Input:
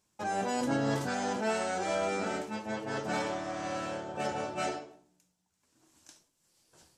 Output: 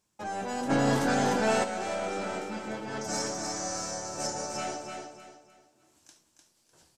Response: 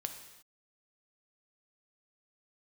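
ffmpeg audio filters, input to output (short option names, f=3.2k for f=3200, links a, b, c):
-filter_complex "[0:a]aeval=exprs='0.119*(cos(1*acos(clip(val(0)/0.119,-1,1)))-cos(1*PI/2))+0.0119*(cos(5*acos(clip(val(0)/0.119,-1,1)))-cos(5*PI/2))+0.00376*(cos(6*acos(clip(val(0)/0.119,-1,1)))-cos(6*PI/2))':c=same,asettb=1/sr,asplit=3[a][b][c];[a]atrim=end=3.014[d];[b]atrim=start=3.01:end=4.52,asetpts=PTS-STARTPTS,afade=t=in:d=0.004:c=qsin,afade=t=out:st=1.506:d=0.004:c=qsin,highshelf=f=4.3k:t=q:w=3:g=10.5[e];[c]atrim=start=4.516[f];[d][e]acrossfade=d=0.004:c1=hsin:c2=qsin[g];[g][f]acrossfade=d=0.004:c1=qsin:c2=hsin,aecho=1:1:301|602|903|1204:0.562|0.18|0.0576|0.0184,asplit=3[h][i][j];[h]afade=t=out:st=0.69:d=0.02[k];[i]acontrast=85,afade=t=in:st=0.69:d=0.02,afade=t=out:st=1.63:d=0.02[l];[j]afade=t=in:st=1.63:d=0.02[m];[k][l][m]amix=inputs=3:normalize=0,volume=-4.5dB"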